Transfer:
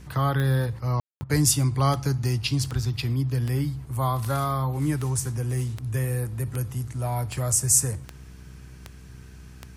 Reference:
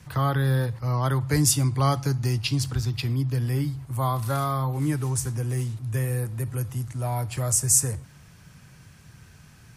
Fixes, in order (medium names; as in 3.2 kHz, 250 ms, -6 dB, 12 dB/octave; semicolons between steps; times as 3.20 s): de-click; de-hum 63.5 Hz, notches 7; room tone fill 1.00–1.21 s; interpolate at 1.24 s, 55 ms